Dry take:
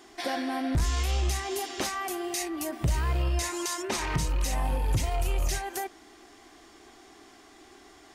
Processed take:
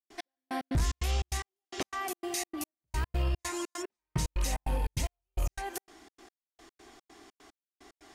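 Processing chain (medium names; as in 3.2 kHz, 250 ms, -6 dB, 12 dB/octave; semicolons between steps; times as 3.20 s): trance gate ".x...x.xx.xx" 148 bpm -60 dB; trim -2 dB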